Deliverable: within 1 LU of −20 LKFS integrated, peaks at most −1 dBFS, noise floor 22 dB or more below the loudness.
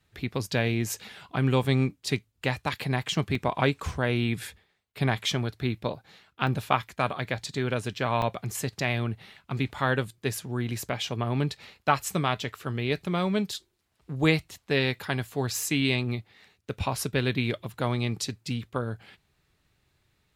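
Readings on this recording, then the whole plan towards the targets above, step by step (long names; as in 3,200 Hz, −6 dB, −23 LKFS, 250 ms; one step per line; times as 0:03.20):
number of dropouts 3; longest dropout 2.8 ms; integrated loudness −29.0 LKFS; sample peak −5.5 dBFS; target loudness −20.0 LKFS
→ repair the gap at 0:03.35/0:06.47/0:08.22, 2.8 ms
level +9 dB
brickwall limiter −1 dBFS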